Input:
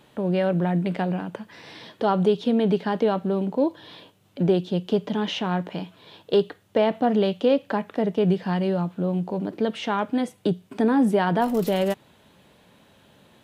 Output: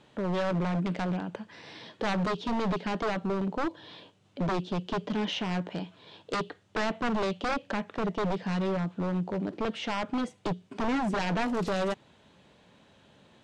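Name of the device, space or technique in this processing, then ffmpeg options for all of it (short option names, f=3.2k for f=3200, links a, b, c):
synthesiser wavefolder: -af "aeval=exprs='0.1*(abs(mod(val(0)/0.1+3,4)-2)-1)':c=same,lowpass=f=7.9k:w=0.5412,lowpass=f=7.9k:w=1.3066,volume=-3.5dB"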